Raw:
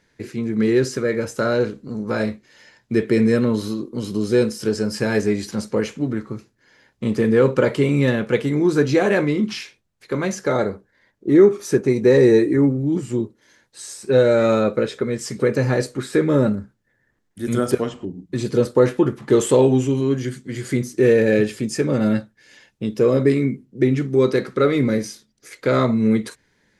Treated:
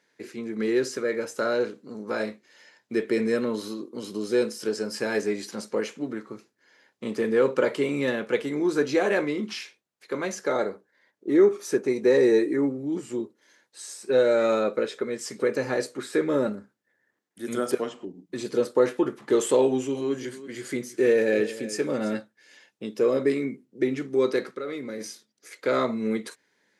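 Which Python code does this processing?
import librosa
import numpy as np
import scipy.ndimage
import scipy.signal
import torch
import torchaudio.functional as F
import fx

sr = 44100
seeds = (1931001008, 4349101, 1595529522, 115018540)

y = fx.echo_single(x, sr, ms=331, db=-15.5, at=(19.62, 22.18))
y = fx.level_steps(y, sr, step_db=13, at=(24.51, 25.01))
y = scipy.signal.sosfilt(scipy.signal.butter(2, 300.0, 'highpass', fs=sr, output='sos'), y)
y = F.gain(torch.from_numpy(y), -4.5).numpy()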